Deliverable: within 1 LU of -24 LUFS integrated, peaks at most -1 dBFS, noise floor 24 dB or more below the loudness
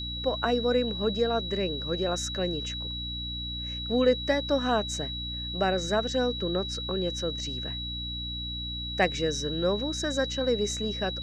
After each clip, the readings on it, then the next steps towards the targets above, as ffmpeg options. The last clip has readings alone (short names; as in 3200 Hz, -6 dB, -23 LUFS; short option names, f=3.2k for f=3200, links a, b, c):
hum 60 Hz; harmonics up to 300 Hz; hum level -36 dBFS; steady tone 3900 Hz; tone level -34 dBFS; loudness -28.5 LUFS; peak -10.5 dBFS; loudness target -24.0 LUFS
-> -af "bandreject=f=60:t=h:w=6,bandreject=f=120:t=h:w=6,bandreject=f=180:t=h:w=6,bandreject=f=240:t=h:w=6,bandreject=f=300:t=h:w=6"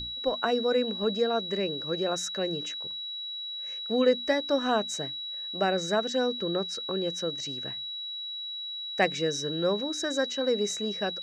hum none; steady tone 3900 Hz; tone level -34 dBFS
-> -af "bandreject=f=3.9k:w=30"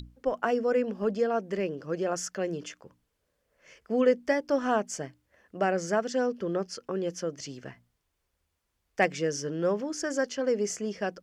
steady tone none; loudness -29.5 LUFS; peak -11.0 dBFS; loudness target -24.0 LUFS
-> -af "volume=5.5dB"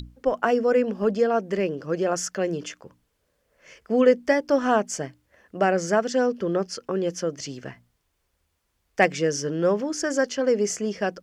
loudness -24.0 LUFS; peak -5.5 dBFS; noise floor -73 dBFS